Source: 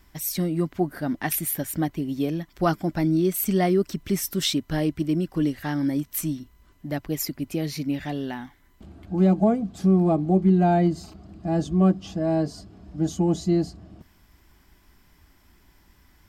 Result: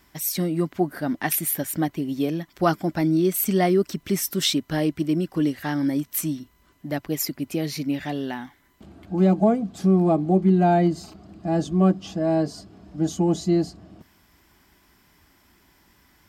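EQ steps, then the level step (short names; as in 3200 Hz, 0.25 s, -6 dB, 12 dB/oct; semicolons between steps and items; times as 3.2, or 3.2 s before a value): HPF 160 Hz 6 dB/oct; +2.5 dB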